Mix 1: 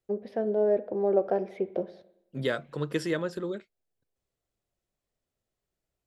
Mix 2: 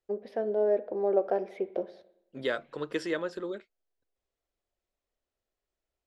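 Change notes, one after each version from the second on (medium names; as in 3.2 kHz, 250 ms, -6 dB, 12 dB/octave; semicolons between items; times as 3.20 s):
second voice: add distance through air 57 m; master: add peaking EQ 140 Hz -14 dB 1.2 oct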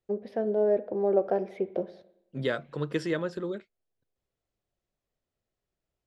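master: add peaking EQ 140 Hz +14 dB 1.2 oct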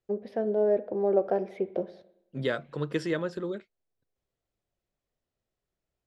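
no change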